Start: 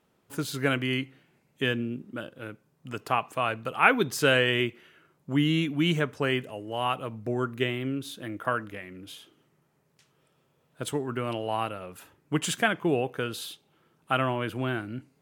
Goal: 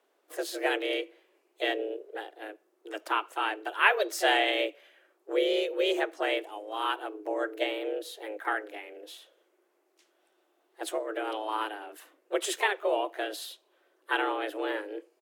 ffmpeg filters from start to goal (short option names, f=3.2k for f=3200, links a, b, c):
-filter_complex "[0:a]asplit=3[a][b][c];[b]asetrate=37084,aresample=44100,atempo=1.18921,volume=-11dB[d];[c]asetrate=52444,aresample=44100,atempo=0.840896,volume=-12dB[e];[a][d][e]amix=inputs=3:normalize=0,afreqshift=210,volume=-3dB"